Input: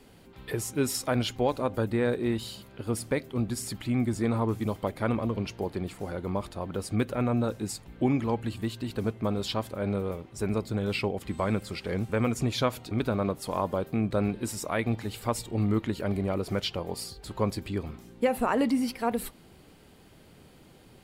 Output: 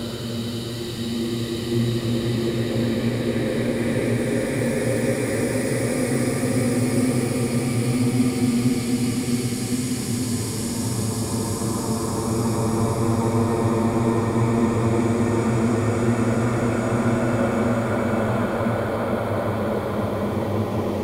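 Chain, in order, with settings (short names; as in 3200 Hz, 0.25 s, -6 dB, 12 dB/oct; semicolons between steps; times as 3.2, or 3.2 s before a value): slices in reverse order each 82 ms, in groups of 7; Paulstretch 8.1×, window 1.00 s, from 2.53; gain +7.5 dB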